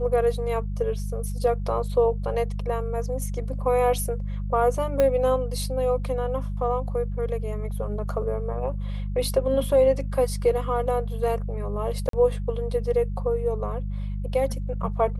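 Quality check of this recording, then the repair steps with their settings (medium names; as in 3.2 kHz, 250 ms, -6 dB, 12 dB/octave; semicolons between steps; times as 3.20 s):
hum 50 Hz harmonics 4 -29 dBFS
5.00 s: pop -10 dBFS
12.09–12.13 s: dropout 43 ms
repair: de-click; de-hum 50 Hz, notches 4; interpolate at 12.09 s, 43 ms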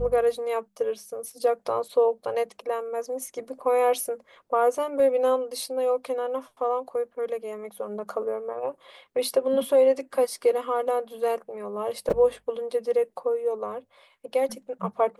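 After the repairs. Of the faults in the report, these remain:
5.00 s: pop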